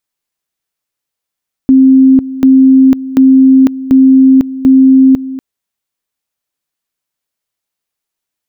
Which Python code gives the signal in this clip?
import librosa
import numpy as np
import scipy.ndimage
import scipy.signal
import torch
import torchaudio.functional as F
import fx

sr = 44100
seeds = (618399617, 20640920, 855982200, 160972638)

y = fx.two_level_tone(sr, hz=264.0, level_db=-1.5, drop_db=16.0, high_s=0.5, low_s=0.24, rounds=5)